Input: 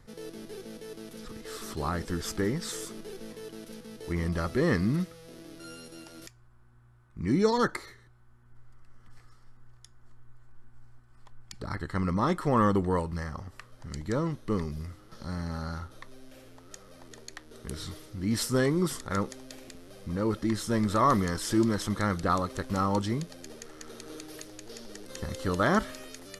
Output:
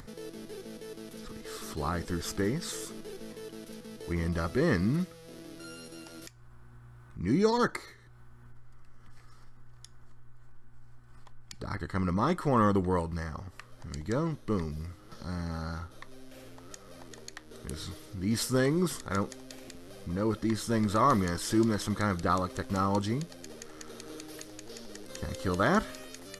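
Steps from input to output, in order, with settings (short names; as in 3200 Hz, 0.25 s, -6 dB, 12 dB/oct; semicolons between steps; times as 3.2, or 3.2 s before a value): upward compressor, threshold -40 dBFS; gain -1 dB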